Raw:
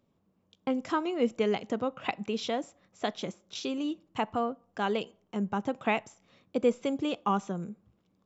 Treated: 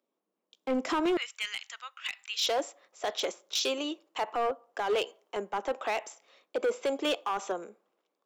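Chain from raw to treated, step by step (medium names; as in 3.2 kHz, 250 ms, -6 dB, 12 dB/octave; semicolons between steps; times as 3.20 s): high-pass 300 Hz 24 dB/octave, from 1.17 s 1.5 kHz, from 2.47 s 410 Hz; peak limiter -27 dBFS, peak gain reduction 11 dB; hard clipper -33 dBFS, distortion -13 dB; three bands expanded up and down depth 40%; trim +8.5 dB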